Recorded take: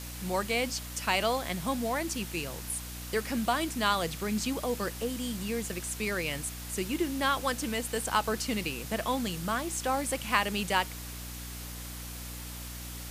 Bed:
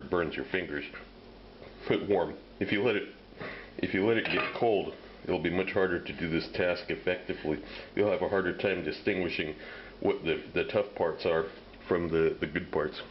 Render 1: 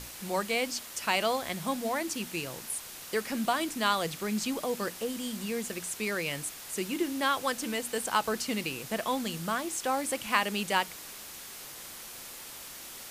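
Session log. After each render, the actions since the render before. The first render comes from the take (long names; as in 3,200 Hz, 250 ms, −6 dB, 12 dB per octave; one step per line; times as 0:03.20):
mains-hum notches 60/120/180/240/300 Hz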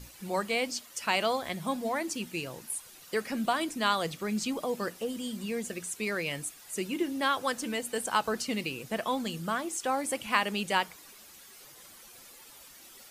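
broadband denoise 11 dB, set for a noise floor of −45 dBFS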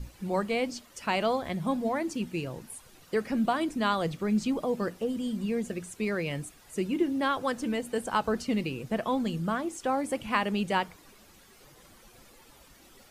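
spectral tilt −2.5 dB per octave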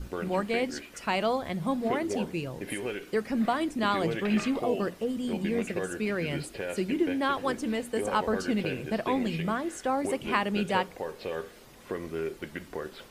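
mix in bed −6.5 dB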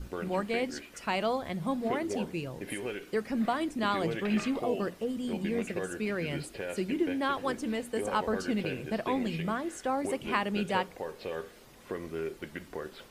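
level −2.5 dB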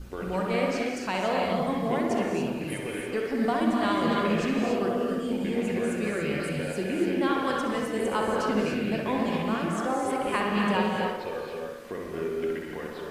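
tape delay 64 ms, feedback 69%, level −3 dB, low-pass 2,800 Hz
reverb whose tail is shaped and stops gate 310 ms rising, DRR 0.5 dB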